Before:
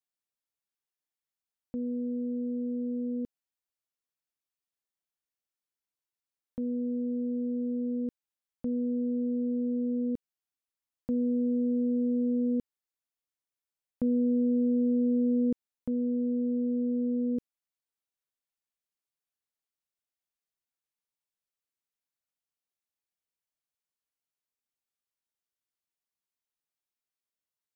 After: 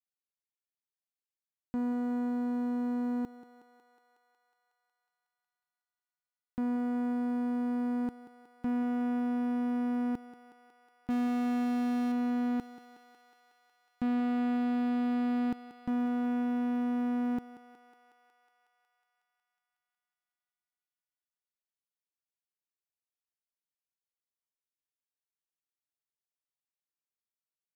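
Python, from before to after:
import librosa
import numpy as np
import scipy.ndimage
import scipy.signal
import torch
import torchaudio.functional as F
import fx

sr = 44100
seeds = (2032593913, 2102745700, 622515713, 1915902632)

p1 = fx.zero_step(x, sr, step_db=-46.5, at=(11.1, 12.12))
p2 = fx.leveller(p1, sr, passes=3)
p3 = p2 + fx.echo_thinned(p2, sr, ms=183, feedback_pct=80, hz=450.0, wet_db=-11.5, dry=0)
y = p3 * 10.0 ** (-5.0 / 20.0)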